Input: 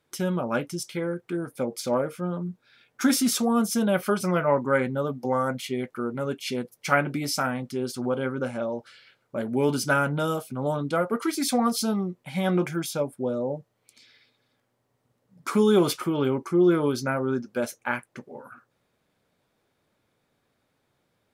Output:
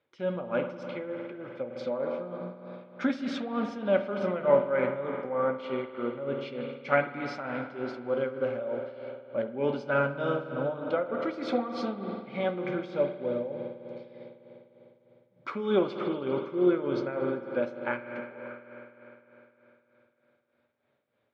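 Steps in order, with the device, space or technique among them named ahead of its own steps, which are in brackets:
combo amplifier with spring reverb and tremolo (spring reverb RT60 3.8 s, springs 50 ms, chirp 30 ms, DRR 4 dB; amplitude tremolo 3.3 Hz, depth 66%; loudspeaker in its box 100–3,700 Hz, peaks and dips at 170 Hz −6 dB, 550 Hz +8 dB, 2,200 Hz +3 dB)
level −5 dB

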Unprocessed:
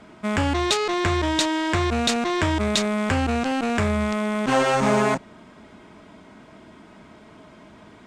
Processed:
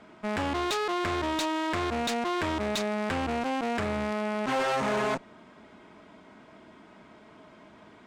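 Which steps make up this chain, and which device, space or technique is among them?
tube preamp driven hard (tube saturation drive 23 dB, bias 0.65; low-shelf EQ 180 Hz −8 dB; high-shelf EQ 6,200 Hz −8.5 dB)

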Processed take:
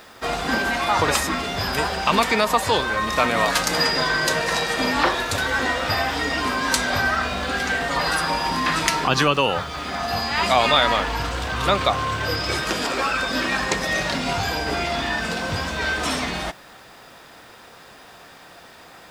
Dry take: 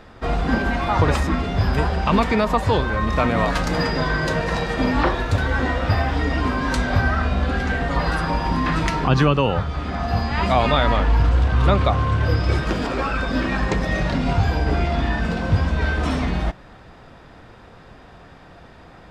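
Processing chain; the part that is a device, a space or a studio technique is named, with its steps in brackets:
turntable without a phono preamp (RIAA equalisation recording; white noise bed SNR 37 dB)
level +1.5 dB

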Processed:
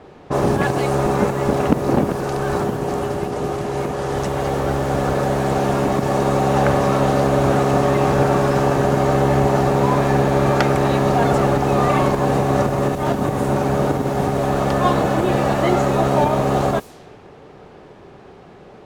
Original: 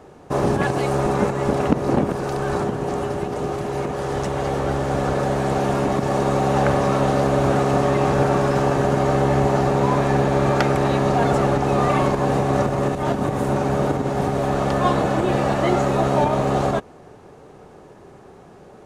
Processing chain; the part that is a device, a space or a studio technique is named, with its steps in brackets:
cassette deck with a dynamic noise filter (white noise bed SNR 28 dB; low-pass that shuts in the quiet parts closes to 1,900 Hz, open at −19.5 dBFS)
level +2 dB

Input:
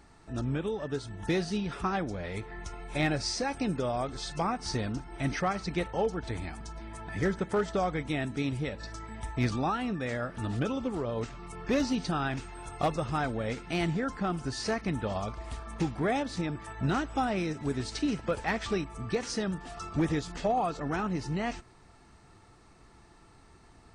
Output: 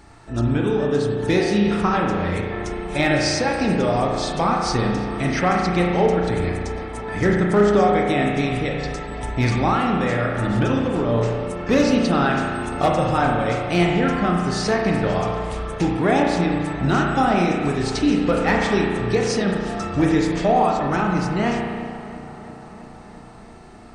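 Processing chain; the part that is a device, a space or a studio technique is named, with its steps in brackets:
mains-hum notches 50/100/150 Hz
dub delay into a spring reverb (feedback echo with a low-pass in the loop 336 ms, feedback 77%, low-pass 3,600 Hz, level −17 dB; spring reverb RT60 1.7 s, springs 34 ms, chirp 70 ms, DRR −0.5 dB)
level +8.5 dB

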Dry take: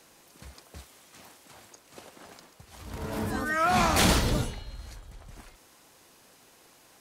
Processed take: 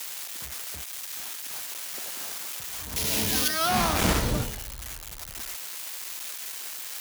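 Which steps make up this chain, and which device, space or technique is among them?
budget class-D amplifier (gap after every zero crossing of 0.18 ms; spike at every zero crossing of −18 dBFS)
0:02.96–0:03.48: high shelf with overshoot 1,800 Hz +9 dB, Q 1.5

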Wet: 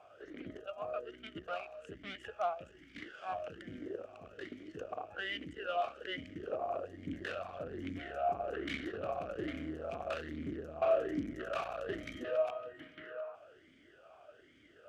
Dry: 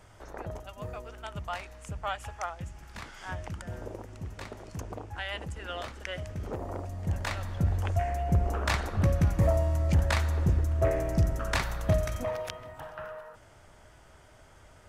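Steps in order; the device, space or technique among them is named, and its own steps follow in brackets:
talk box (tube saturation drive 33 dB, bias 0.7; formant filter swept between two vowels a-i 1.2 Hz)
level +13 dB

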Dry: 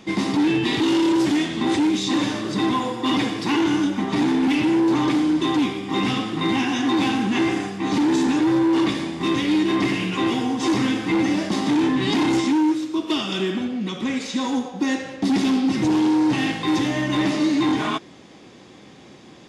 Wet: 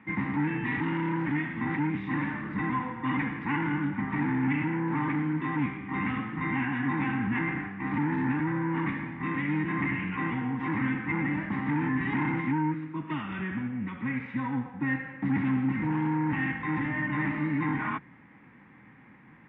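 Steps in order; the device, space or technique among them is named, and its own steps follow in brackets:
sub-octave bass pedal (sub-octave generator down 1 octave, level −4 dB; loudspeaker in its box 81–2,000 Hz, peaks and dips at 95 Hz −10 dB, 370 Hz −9 dB, 890 Hz +10 dB)
drawn EQ curve 270 Hz 0 dB, 660 Hz −13 dB, 2,000 Hz +9 dB, 4,300 Hz −7 dB, 6,400 Hz −3 dB
level −6.5 dB

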